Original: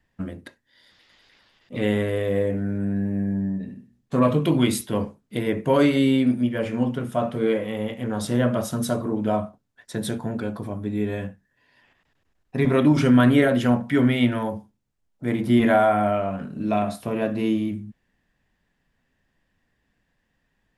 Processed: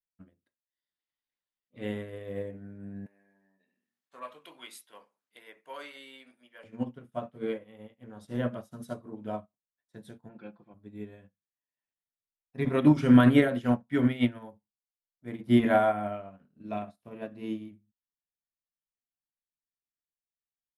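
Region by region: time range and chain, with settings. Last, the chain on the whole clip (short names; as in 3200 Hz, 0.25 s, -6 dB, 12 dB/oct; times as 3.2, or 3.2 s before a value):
3.06–6.64 HPF 930 Hz + fast leveller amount 50%
10.29–10.74 speaker cabinet 160–4600 Hz, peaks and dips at 170 Hz +6 dB, 870 Hz +4 dB, 1400 Hz +5 dB, 2500 Hz +7 dB + comb 5.8 ms, depth 57%
whole clip: bell 7500 Hz -2.5 dB 0.77 oct; upward expander 2.5:1, over -39 dBFS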